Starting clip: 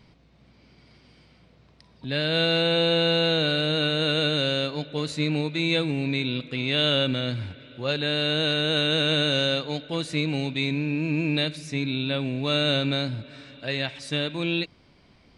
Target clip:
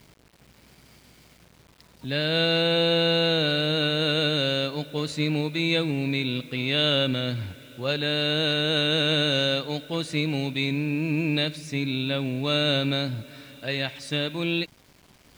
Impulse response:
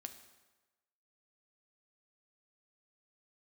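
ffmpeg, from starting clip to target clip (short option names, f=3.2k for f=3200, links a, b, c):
-af "acrusher=bits=8:mix=0:aa=0.000001"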